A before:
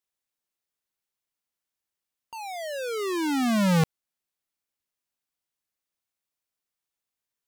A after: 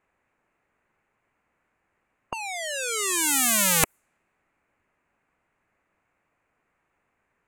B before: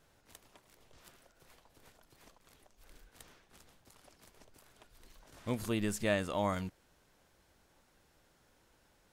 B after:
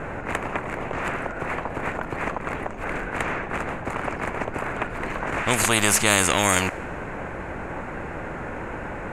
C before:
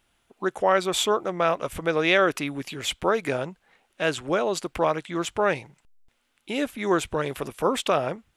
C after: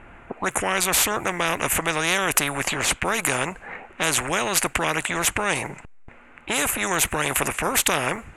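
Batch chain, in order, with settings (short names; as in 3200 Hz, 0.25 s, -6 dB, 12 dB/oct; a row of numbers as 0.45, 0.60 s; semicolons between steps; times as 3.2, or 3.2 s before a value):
band shelf 4200 Hz -16 dB 1.1 oct; low-pass opened by the level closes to 2400 Hz, open at -24.5 dBFS; spectral compressor 4:1; normalise peaks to -2 dBFS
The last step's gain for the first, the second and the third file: +15.0, +17.0, +5.0 dB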